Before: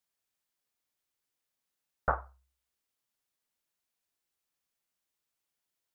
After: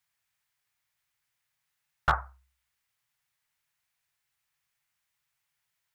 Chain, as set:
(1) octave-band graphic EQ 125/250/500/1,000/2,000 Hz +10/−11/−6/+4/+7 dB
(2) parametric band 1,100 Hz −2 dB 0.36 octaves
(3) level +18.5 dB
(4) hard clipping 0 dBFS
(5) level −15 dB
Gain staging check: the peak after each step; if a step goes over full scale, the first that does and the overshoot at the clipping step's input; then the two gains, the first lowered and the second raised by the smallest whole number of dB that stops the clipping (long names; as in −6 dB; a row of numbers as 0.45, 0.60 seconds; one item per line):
−10.5, −11.0, +7.5, 0.0, −15.0 dBFS
step 3, 7.5 dB
step 3 +10.5 dB, step 5 −7 dB